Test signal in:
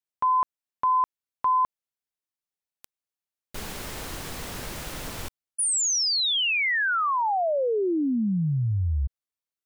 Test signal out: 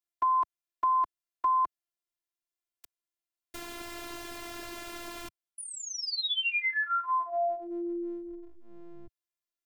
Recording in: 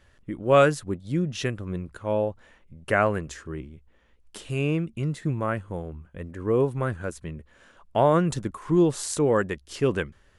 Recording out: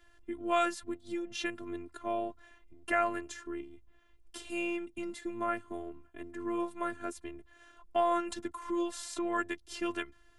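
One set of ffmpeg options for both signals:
-filter_complex "[0:a]afftfilt=real='hypot(re,im)*cos(PI*b)':imag='0':win_size=512:overlap=0.75,acrossover=split=100|690|4200[s0][s1][s2][s3];[s0]acompressor=threshold=0.00282:ratio=4[s4];[s1]acompressor=threshold=0.0158:ratio=4[s5];[s2]acompressor=threshold=0.0501:ratio=4[s6];[s3]acompressor=threshold=0.00631:ratio=4[s7];[s4][s5][s6][s7]amix=inputs=4:normalize=0"

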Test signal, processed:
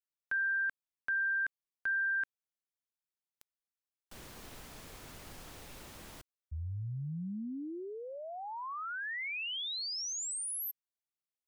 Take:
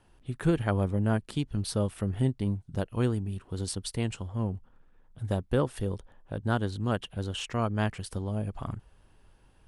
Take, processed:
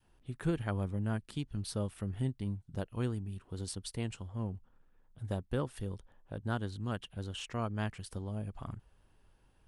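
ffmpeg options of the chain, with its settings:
-af "adynamicequalizer=threshold=0.00708:dfrequency=530:dqfactor=0.8:tfrequency=530:tqfactor=0.8:attack=5:release=100:ratio=0.375:range=3:mode=cutabove:tftype=bell,volume=0.473"

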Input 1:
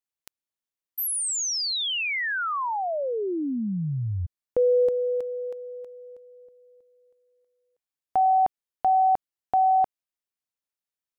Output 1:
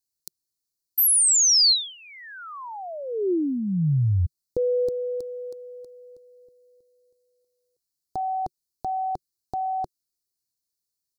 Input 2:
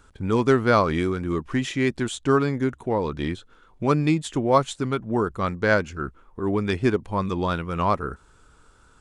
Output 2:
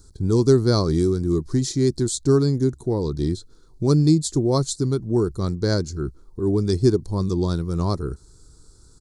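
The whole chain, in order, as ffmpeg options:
-af "firequalizer=gain_entry='entry(150,0);entry(220,-7);entry(360,-1);entry(540,-13);entry(2800,-28);entry(4200,4);entry(6600,2)':delay=0.05:min_phase=1,volume=2.24"

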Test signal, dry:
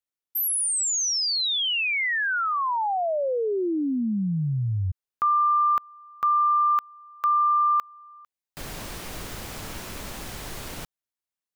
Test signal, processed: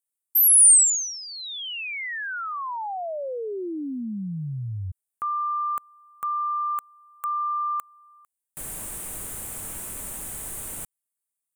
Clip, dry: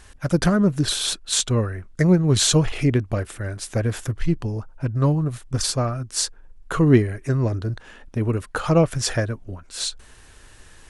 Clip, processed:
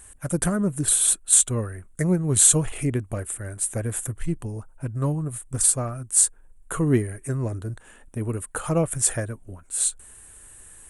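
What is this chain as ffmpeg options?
-af "highshelf=f=6700:t=q:w=3:g=11,volume=0.531"

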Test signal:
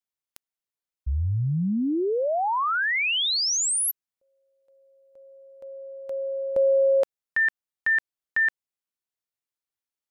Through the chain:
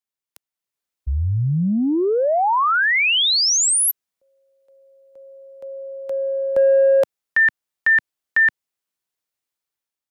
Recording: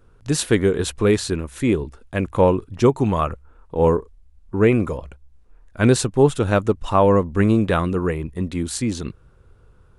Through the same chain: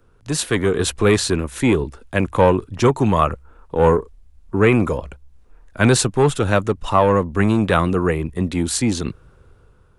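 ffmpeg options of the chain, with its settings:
-filter_complex "[0:a]lowshelf=f=140:g=-3.5,acrossover=split=150|730|3500[s0][s1][s2][s3];[s1]asoftclip=type=tanh:threshold=0.119[s4];[s0][s4][s2][s3]amix=inputs=4:normalize=0,dynaudnorm=f=270:g=5:m=2.24"

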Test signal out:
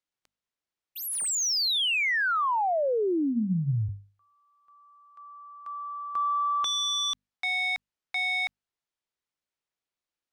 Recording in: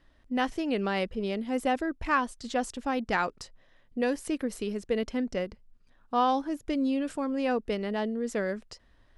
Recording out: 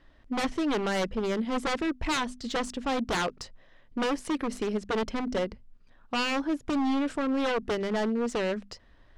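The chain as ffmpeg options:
-af "aeval=exprs='0.0473*(abs(mod(val(0)/0.0473+3,4)-2)-1)':c=same,bandreject=f=50:t=h:w=6,bandreject=f=100:t=h:w=6,bandreject=f=150:t=h:w=6,bandreject=f=200:t=h:w=6,bandreject=f=250:t=h:w=6,adynamicsmooth=sensitivity=6.5:basefreq=6900,volume=1.68"

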